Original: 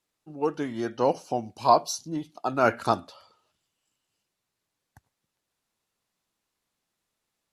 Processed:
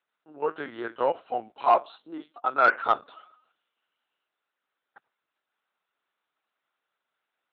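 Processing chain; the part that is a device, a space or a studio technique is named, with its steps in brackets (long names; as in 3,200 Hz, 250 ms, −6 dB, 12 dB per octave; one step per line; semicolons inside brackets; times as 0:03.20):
talking toy (linear-prediction vocoder at 8 kHz pitch kept; high-pass filter 390 Hz 12 dB per octave; parametric band 1,400 Hz +8.5 dB 0.55 octaves; soft clipping −8 dBFS, distortion −19 dB)
0:01.65–0:02.85: high-pass filter 200 Hz 6 dB per octave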